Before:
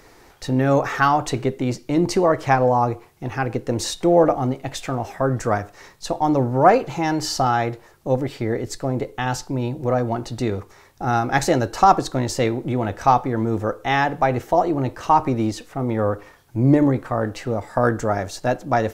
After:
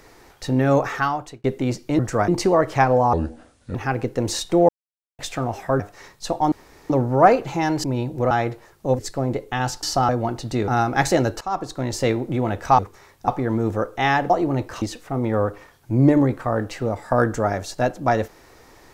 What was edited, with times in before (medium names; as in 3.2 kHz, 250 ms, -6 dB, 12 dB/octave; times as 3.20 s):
0.77–1.44 s: fade out
2.84–3.26 s: speed 68%
4.20–4.70 s: mute
5.31–5.60 s: move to 1.99 s
6.32 s: insert room tone 0.38 s
7.26–7.52 s: swap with 9.49–9.96 s
8.20–8.65 s: delete
10.55–11.04 s: move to 13.15 s
11.77–12.43 s: fade in linear, from -20 dB
14.17–14.57 s: delete
15.09–15.47 s: delete